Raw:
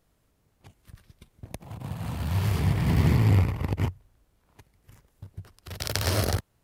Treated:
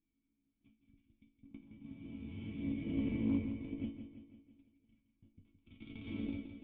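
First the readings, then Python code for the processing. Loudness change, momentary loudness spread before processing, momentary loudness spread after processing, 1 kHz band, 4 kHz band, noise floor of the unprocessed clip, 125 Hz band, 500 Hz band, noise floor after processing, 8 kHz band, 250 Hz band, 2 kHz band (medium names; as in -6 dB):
-14.0 dB, 23 LU, 21 LU, under -25 dB, under -20 dB, -70 dBFS, -22.5 dB, -16.5 dB, -83 dBFS, under -40 dB, -6.0 dB, -18.5 dB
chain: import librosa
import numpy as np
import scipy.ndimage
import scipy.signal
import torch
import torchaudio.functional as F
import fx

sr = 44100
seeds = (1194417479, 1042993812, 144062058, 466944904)

p1 = fx.lower_of_two(x, sr, delay_ms=0.84)
p2 = fx.dynamic_eq(p1, sr, hz=440.0, q=1.5, threshold_db=-45.0, ratio=4.0, max_db=5)
p3 = np.clip(p2, -10.0 ** (-13.5 / 20.0), 10.0 ** (-13.5 / 20.0))
p4 = fx.formant_cascade(p3, sr, vowel='i')
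p5 = fx.cheby_harmonics(p4, sr, harmonics=(6,), levels_db=(-33,), full_scale_db=-20.0)
p6 = fx.resonator_bank(p5, sr, root=57, chord='major', decay_s=0.26)
p7 = fx.cheby_harmonics(p6, sr, harmonics=(4,), levels_db=(-25,), full_scale_db=-38.0)
p8 = p7 + fx.echo_feedback(p7, sr, ms=167, feedback_pct=55, wet_db=-9.5, dry=0)
y = p8 * librosa.db_to_amplitude(14.0)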